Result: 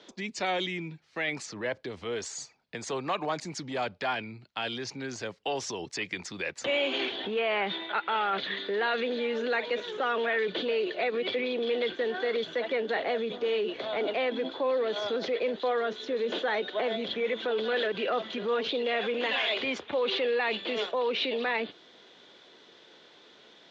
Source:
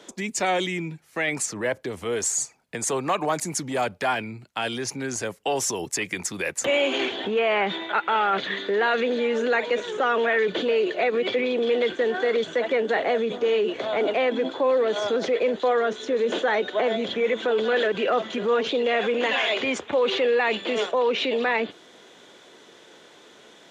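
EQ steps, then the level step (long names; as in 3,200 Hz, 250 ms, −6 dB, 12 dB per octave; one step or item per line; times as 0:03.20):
transistor ladder low-pass 5,300 Hz, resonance 40%
+1.5 dB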